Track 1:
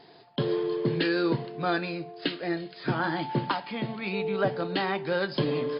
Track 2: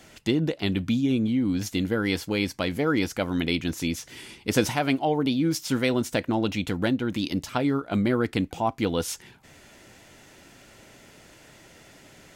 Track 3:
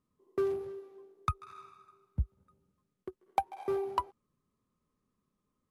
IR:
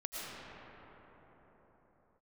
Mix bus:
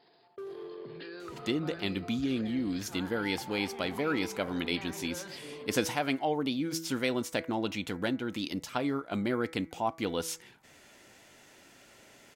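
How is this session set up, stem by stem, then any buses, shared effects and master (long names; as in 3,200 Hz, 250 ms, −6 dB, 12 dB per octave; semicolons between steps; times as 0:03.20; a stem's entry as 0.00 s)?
−10.5 dB, 0.00 s, bus A, no send, level that may rise only so fast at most 140 dB per second
−4.5 dB, 1.20 s, no bus, no send, hum removal 163.5 Hz, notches 14
−12.5 dB, 0.00 s, bus A, send −4 dB, low-pass that shuts in the quiet parts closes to 360 Hz, open at −32.5 dBFS
bus A: 0.0 dB, transient designer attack −2 dB, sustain +12 dB; brickwall limiter −35.5 dBFS, peak gain reduction 11 dB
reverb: on, pre-delay 70 ms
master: low-shelf EQ 170 Hz −10 dB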